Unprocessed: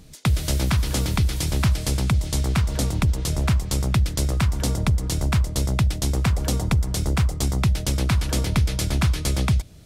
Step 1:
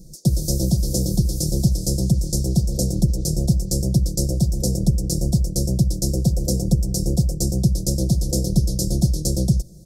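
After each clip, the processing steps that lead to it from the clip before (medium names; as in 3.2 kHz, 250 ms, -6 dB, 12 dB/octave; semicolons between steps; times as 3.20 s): elliptic band-stop 560–5200 Hz, stop band 50 dB; comb 5.7 ms, depth 78%; trim +2.5 dB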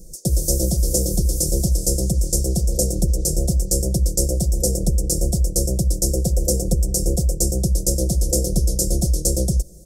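ten-band graphic EQ 125 Hz -11 dB, 250 Hz -7 dB, 500 Hz +4 dB, 1 kHz -10 dB, 2 kHz +11 dB, 4 kHz -12 dB, 8 kHz +4 dB; trim +5 dB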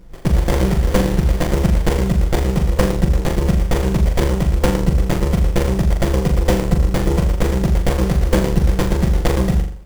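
Chebyshev shaper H 7 -24 dB, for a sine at -4 dBFS; flutter echo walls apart 7.1 m, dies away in 0.5 s; sliding maximum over 33 samples; trim +4.5 dB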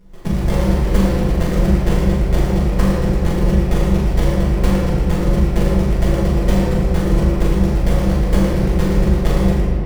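reverberation RT60 3.1 s, pre-delay 5 ms, DRR -5.5 dB; trim -7.5 dB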